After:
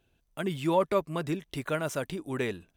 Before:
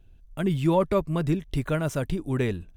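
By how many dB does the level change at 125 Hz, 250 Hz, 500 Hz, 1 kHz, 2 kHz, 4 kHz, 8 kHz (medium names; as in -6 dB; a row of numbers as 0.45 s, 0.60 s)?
-10.0 dB, -6.5 dB, -3.0 dB, -1.0 dB, -0.5 dB, 0.0 dB, 0.0 dB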